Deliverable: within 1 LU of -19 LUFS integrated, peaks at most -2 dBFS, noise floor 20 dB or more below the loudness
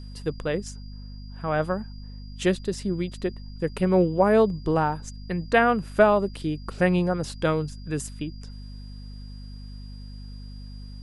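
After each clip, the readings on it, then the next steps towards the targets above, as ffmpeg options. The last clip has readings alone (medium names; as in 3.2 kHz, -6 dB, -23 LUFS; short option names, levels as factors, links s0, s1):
hum 50 Hz; highest harmonic 250 Hz; hum level -37 dBFS; steady tone 4.8 kHz; tone level -52 dBFS; loudness -25.0 LUFS; peak level -5.0 dBFS; loudness target -19.0 LUFS
-> -af "bandreject=f=50:t=h:w=4,bandreject=f=100:t=h:w=4,bandreject=f=150:t=h:w=4,bandreject=f=200:t=h:w=4,bandreject=f=250:t=h:w=4"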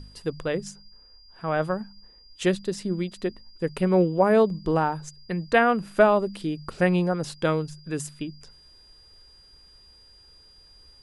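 hum not found; steady tone 4.8 kHz; tone level -52 dBFS
-> -af "bandreject=f=4800:w=30"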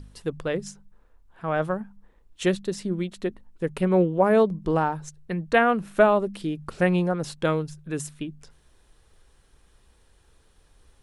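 steady tone not found; loudness -25.0 LUFS; peak level -6.0 dBFS; loudness target -19.0 LUFS
-> -af "volume=2,alimiter=limit=0.794:level=0:latency=1"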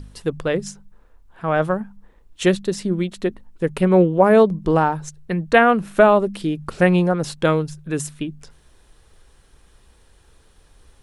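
loudness -19.0 LUFS; peak level -2.0 dBFS; noise floor -54 dBFS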